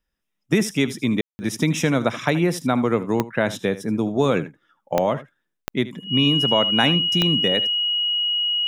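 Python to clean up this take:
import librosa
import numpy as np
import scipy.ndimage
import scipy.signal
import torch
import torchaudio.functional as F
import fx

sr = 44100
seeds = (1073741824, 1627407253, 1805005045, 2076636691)

y = fx.fix_declick_ar(x, sr, threshold=10.0)
y = fx.notch(y, sr, hz=2900.0, q=30.0)
y = fx.fix_ambience(y, sr, seeds[0], print_start_s=0.0, print_end_s=0.5, start_s=1.21, end_s=1.39)
y = fx.fix_echo_inverse(y, sr, delay_ms=78, level_db=-16.0)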